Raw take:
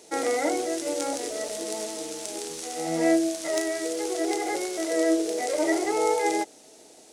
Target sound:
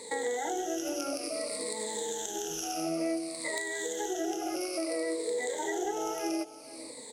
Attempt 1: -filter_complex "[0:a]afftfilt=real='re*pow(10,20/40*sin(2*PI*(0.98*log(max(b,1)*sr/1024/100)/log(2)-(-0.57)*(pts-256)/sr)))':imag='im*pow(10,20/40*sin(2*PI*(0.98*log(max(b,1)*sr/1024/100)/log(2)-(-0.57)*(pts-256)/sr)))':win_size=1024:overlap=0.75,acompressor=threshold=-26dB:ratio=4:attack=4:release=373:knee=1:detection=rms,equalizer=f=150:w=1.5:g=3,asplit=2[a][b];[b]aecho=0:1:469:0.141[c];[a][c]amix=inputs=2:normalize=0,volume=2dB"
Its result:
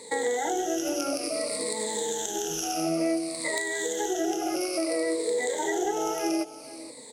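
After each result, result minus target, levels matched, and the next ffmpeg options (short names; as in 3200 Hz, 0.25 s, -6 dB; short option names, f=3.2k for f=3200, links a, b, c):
compressor: peak gain reduction -5 dB; 125 Hz band +2.5 dB
-filter_complex "[0:a]afftfilt=real='re*pow(10,20/40*sin(2*PI*(0.98*log(max(b,1)*sr/1024/100)/log(2)-(-0.57)*(pts-256)/sr)))':imag='im*pow(10,20/40*sin(2*PI*(0.98*log(max(b,1)*sr/1024/100)/log(2)-(-0.57)*(pts-256)/sr)))':win_size=1024:overlap=0.75,acompressor=threshold=-32.5dB:ratio=4:attack=4:release=373:knee=1:detection=rms,equalizer=f=150:w=1.5:g=3,asplit=2[a][b];[b]aecho=0:1:469:0.141[c];[a][c]amix=inputs=2:normalize=0,volume=2dB"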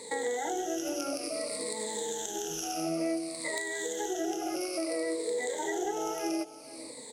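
125 Hz band +2.5 dB
-filter_complex "[0:a]afftfilt=real='re*pow(10,20/40*sin(2*PI*(0.98*log(max(b,1)*sr/1024/100)/log(2)-(-0.57)*(pts-256)/sr)))':imag='im*pow(10,20/40*sin(2*PI*(0.98*log(max(b,1)*sr/1024/100)/log(2)-(-0.57)*(pts-256)/sr)))':win_size=1024:overlap=0.75,acompressor=threshold=-32.5dB:ratio=4:attack=4:release=373:knee=1:detection=rms,asplit=2[a][b];[b]aecho=0:1:469:0.141[c];[a][c]amix=inputs=2:normalize=0,volume=2dB"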